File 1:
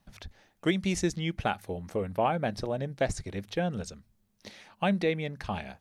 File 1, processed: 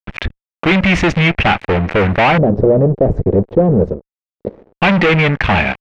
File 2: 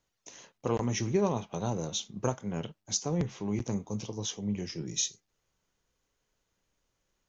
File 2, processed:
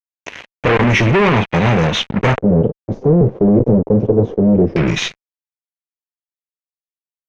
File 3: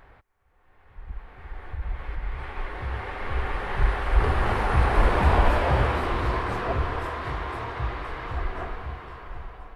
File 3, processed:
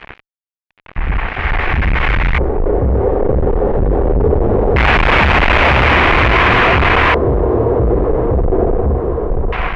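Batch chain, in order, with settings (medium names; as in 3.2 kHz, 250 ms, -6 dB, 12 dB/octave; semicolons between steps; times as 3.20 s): fuzz box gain 39 dB, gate -48 dBFS; LFO low-pass square 0.21 Hz 470–2400 Hz; trim +2.5 dB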